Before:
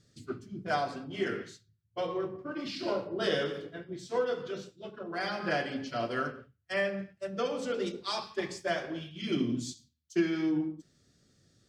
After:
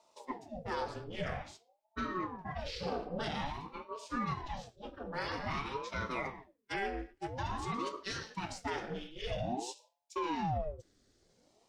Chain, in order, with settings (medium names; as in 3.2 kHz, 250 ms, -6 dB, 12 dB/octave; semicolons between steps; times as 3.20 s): peak limiter -25 dBFS, peak gain reduction 9 dB; ring modulator with a swept carrier 460 Hz, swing 70%, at 0.5 Hz